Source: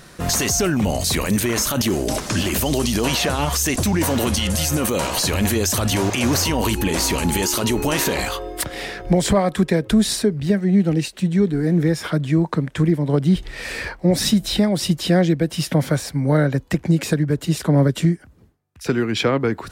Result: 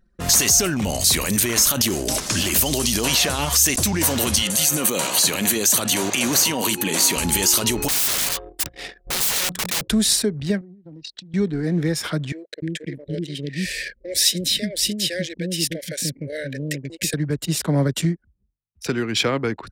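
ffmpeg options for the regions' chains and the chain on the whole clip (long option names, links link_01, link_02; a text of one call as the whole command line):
ffmpeg -i in.wav -filter_complex "[0:a]asettb=1/sr,asplit=3[link_01][link_02][link_03];[link_01]atrim=end=4.424[link_04];[link_02]atrim=start=4.42:end=7.17,asetpts=PTS-STARTPTS,afade=type=in:duration=0.004:curve=qsin,afade=type=out:start_time=2.746:duration=0.004:curve=qsin,highpass=frequency=140:width=0.5412,highpass=frequency=140:width=1.3066,bandreject=frequency=5200:width=7.6[link_05];[link_03]atrim=start=7.166[link_06];[link_04][link_05]acrossfade=duration=0.004:curve1=hsin:curve2=qsin[link_07];[link_07][link_06]acrossfade=duration=0.004:curve1=qsin:curve2=hsin,asettb=1/sr,asplit=3[link_08][link_09][link_10];[link_08]atrim=end=7.884[link_11];[link_09]atrim=start=7.88:end=9.84,asetpts=PTS-STARTPTS,afade=type=in:duration=0.004:curve=qsin,afade=type=out:start_time=1.956:duration=0.004:curve=qsin,agate=range=-33dB:threshold=-26dB:ratio=3:release=100:detection=peak,bandreject=frequency=60:width_type=h:width=6,bandreject=frequency=120:width_type=h:width=6,bandreject=frequency=180:width_type=h:width=6,bandreject=frequency=240:width_type=h:width=6,aeval=exprs='(mod(10.6*val(0)+1,2)-1)/10.6':channel_layout=same[link_12];[link_10]atrim=start=9.836[link_13];[link_11][link_12]acrossfade=duration=0.004:curve1=hsin:curve2=qsin[link_14];[link_14][link_13]acrossfade=duration=0.004:curve1=qsin:curve2=hsin,asettb=1/sr,asplit=3[link_15][link_16][link_17];[link_15]atrim=end=10.614[link_18];[link_16]atrim=start=10.61:end=11.34,asetpts=PTS-STARTPTS,afade=type=in:duration=0.004:curve=qsin,afade=type=out:start_time=0.726:duration=0.004:curve=qsin,acompressor=threshold=-29dB:ratio=8:attack=3.2:release=140:knee=1:detection=peak,highpass=130,equalizer=frequency=200:width_type=q:width=4:gain=-10,equalizer=frequency=430:width_type=q:width=4:gain=-9,equalizer=frequency=1100:width_type=q:width=4:gain=-4,equalizer=frequency=2500:width_type=q:width=4:gain=-5,equalizer=frequency=3600:width_type=q:width=4:gain=4,equalizer=frequency=5100:width_type=q:width=4:gain=5,lowpass=frequency=6300:width=0.5412,lowpass=frequency=6300:width=1.3066[link_19];[link_17]atrim=start=11.336[link_20];[link_18][link_19]acrossfade=duration=0.004:curve1=hsin:curve2=qsin[link_21];[link_21][link_20]acrossfade=duration=0.004:curve1=qsin:curve2=hsin,asettb=1/sr,asplit=3[link_22][link_23][link_24];[link_22]atrim=end=12.324[link_25];[link_23]atrim=start=12.32:end=17.14,asetpts=PTS-STARTPTS,afade=type=in:duration=0.004:curve=qsin,afade=type=out:start_time=4.816:duration=0.004:curve=qsin,asuperstop=centerf=1000:order=12:qfactor=0.98,lowshelf=frequency=230:gain=-10.5,acrossover=split=410[link_26][link_27];[link_26]adelay=300[link_28];[link_28][link_27]amix=inputs=2:normalize=0,atrim=end_sample=212562[link_29];[link_24]atrim=start=17.136[link_30];[link_25][link_29]acrossfade=duration=0.004:curve1=hsin:curve2=qsin[link_31];[link_31][link_30]acrossfade=duration=0.004:curve1=qsin:curve2=hsin,anlmdn=10,highshelf=frequency=2600:gain=11,volume=-4dB" out.wav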